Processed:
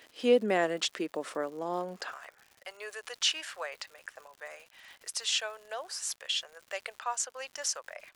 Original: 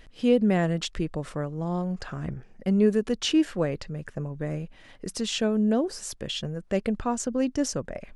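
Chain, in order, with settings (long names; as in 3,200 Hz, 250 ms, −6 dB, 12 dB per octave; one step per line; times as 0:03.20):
Bessel high-pass filter 420 Hz, order 6, from 0:02.11 1,100 Hz
surface crackle 180 per second −46 dBFS
level +1.5 dB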